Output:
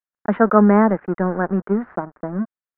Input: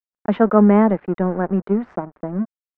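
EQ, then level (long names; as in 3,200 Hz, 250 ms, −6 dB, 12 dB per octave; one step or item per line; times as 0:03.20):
low-pass with resonance 1,600 Hz, resonance Q 2.2
−1.0 dB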